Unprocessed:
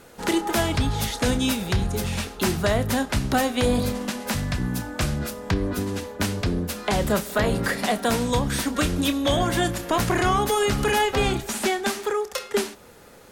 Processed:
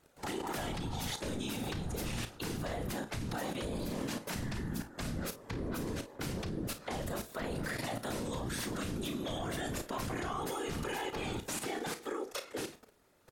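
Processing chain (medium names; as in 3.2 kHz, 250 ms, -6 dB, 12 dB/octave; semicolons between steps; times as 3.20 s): whisper effect; level held to a coarse grid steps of 16 dB; early reflections 34 ms -11.5 dB, 52 ms -15 dB; trim -5.5 dB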